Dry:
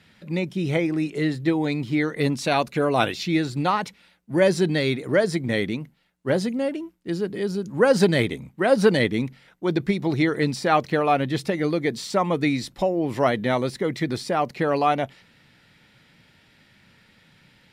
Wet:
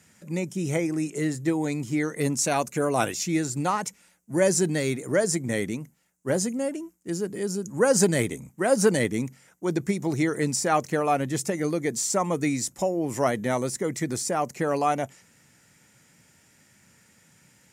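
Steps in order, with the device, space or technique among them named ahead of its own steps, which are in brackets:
budget condenser microphone (high-pass filter 60 Hz; high shelf with overshoot 5,200 Hz +10.5 dB, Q 3)
level −3 dB

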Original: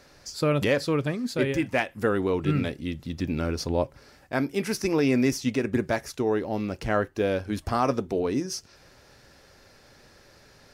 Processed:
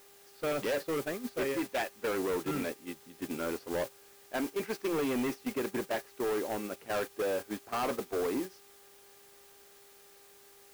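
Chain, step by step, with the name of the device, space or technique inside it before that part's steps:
aircraft radio (band-pass filter 330–2,400 Hz; hard clipping −27.5 dBFS, distortion −7 dB; hum with harmonics 400 Hz, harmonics 37, −50 dBFS −8 dB per octave; white noise bed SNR 12 dB; noise gate −34 dBFS, range −12 dB)
level −1 dB

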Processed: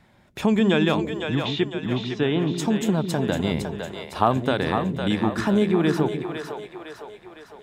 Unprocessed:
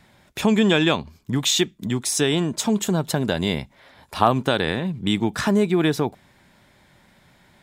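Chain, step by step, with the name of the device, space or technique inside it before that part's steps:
behind a face mask (high-shelf EQ 2,900 Hz −8 dB)
0:01.35–0:02.53: low-pass filter 3,600 Hz 24 dB per octave
echo with a time of its own for lows and highs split 410 Hz, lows 149 ms, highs 507 ms, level −6 dB
level −1.5 dB

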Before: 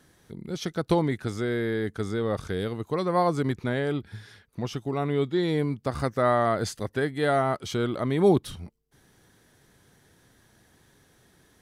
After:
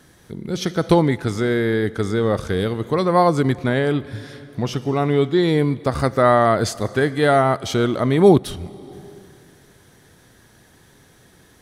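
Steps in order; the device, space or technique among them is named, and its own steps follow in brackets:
compressed reverb return (on a send at −10 dB: convolution reverb RT60 2.0 s, pre-delay 37 ms + downward compressor 12 to 1, threshold −31 dBFS, peak gain reduction 15 dB)
on the sum: level +8 dB

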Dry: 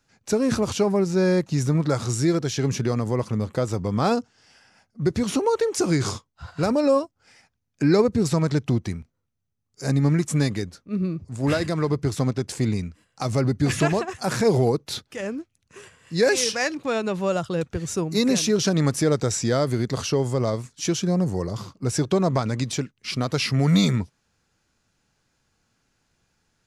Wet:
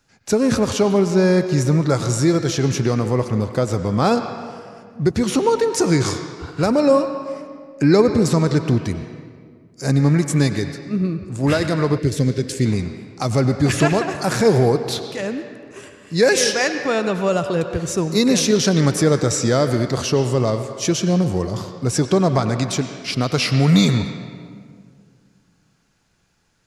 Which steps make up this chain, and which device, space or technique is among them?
filtered reverb send (on a send: high-pass filter 520 Hz 6 dB per octave + low-pass filter 5,100 Hz 12 dB per octave + convolution reverb RT60 2.0 s, pre-delay 88 ms, DRR 7.5 dB)
0:11.98–0:12.66: on the sum: flat-topped bell 930 Hz −15 dB 1.2 octaves
level +4.5 dB

